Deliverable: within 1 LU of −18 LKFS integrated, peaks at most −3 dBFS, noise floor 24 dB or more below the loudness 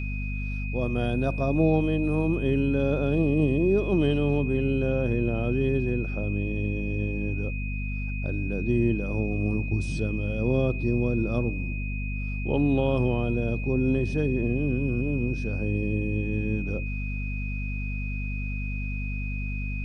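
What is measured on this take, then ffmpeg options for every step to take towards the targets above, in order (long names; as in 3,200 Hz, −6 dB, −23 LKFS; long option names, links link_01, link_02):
mains hum 50 Hz; hum harmonics up to 250 Hz; level of the hum −28 dBFS; interfering tone 2,500 Hz; level of the tone −37 dBFS; integrated loudness −27.0 LKFS; sample peak −11.0 dBFS; target loudness −18.0 LKFS
→ -af "bandreject=frequency=50:width_type=h:width=6,bandreject=frequency=100:width_type=h:width=6,bandreject=frequency=150:width_type=h:width=6,bandreject=frequency=200:width_type=h:width=6,bandreject=frequency=250:width_type=h:width=6"
-af "bandreject=frequency=2500:width=30"
-af "volume=9dB,alimiter=limit=-3dB:level=0:latency=1"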